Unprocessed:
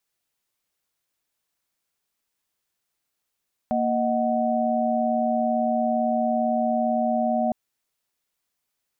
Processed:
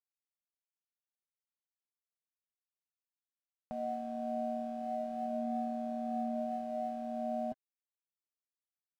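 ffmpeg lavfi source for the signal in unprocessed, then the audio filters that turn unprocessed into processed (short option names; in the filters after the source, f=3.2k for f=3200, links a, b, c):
-f lavfi -i "aevalsrc='0.0596*(sin(2*PI*233.08*t)+sin(2*PI*622.25*t)+sin(2*PI*739.99*t))':d=3.81:s=44100"
-af "alimiter=level_in=1.5dB:limit=-24dB:level=0:latency=1:release=70,volume=-1.5dB,flanger=delay=3.6:depth=4.3:regen=42:speed=0.34:shape=sinusoidal,aeval=exprs='sgn(val(0))*max(abs(val(0))-0.00112,0)':c=same"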